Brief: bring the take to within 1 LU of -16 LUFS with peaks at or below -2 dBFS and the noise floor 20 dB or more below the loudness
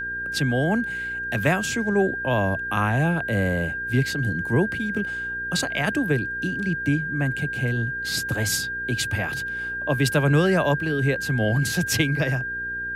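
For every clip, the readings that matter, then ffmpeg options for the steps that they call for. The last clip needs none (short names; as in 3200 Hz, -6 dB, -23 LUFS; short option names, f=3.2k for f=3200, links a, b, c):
hum 60 Hz; harmonics up to 480 Hz; hum level -45 dBFS; steady tone 1600 Hz; tone level -27 dBFS; loudness -23.5 LUFS; peak -8.0 dBFS; loudness target -16.0 LUFS
-> -af "bandreject=f=60:t=h:w=4,bandreject=f=120:t=h:w=4,bandreject=f=180:t=h:w=4,bandreject=f=240:t=h:w=4,bandreject=f=300:t=h:w=4,bandreject=f=360:t=h:w=4,bandreject=f=420:t=h:w=4,bandreject=f=480:t=h:w=4"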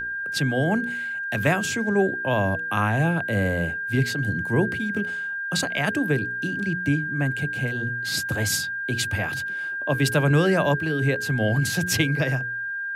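hum none; steady tone 1600 Hz; tone level -27 dBFS
-> -af "bandreject=f=1.6k:w=30"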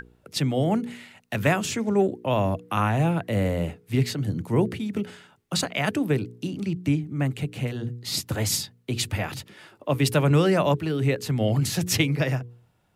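steady tone none; loudness -25.5 LUFS; peak -9.0 dBFS; loudness target -16.0 LUFS
-> -af "volume=9.5dB,alimiter=limit=-2dB:level=0:latency=1"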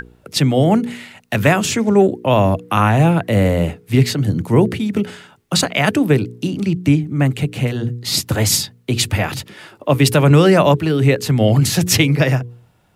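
loudness -16.0 LUFS; peak -2.0 dBFS; noise floor -54 dBFS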